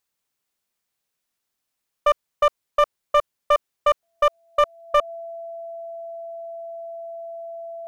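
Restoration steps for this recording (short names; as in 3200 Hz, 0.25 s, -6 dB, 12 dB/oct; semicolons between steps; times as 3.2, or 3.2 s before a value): clip repair -11.5 dBFS; notch 670 Hz, Q 30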